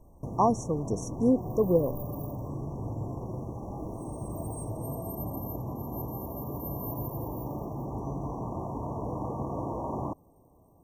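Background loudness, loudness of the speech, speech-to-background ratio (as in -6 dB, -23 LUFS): -36.5 LUFS, -28.0 LUFS, 8.5 dB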